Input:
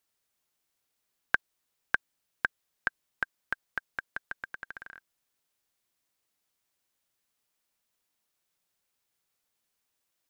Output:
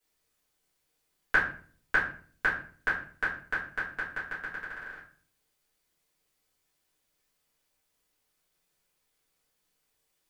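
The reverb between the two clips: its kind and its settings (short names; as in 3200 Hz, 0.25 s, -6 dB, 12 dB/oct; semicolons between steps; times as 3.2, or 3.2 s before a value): shoebox room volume 43 m³, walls mixed, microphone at 2 m; gain -6 dB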